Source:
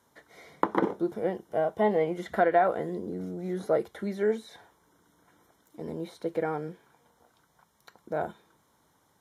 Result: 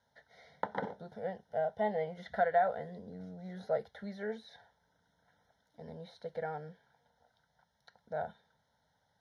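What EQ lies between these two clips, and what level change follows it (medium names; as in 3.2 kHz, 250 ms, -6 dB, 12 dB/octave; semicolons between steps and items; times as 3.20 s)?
low-pass 8.9 kHz 24 dB/octave; static phaser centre 1.7 kHz, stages 8; -5.0 dB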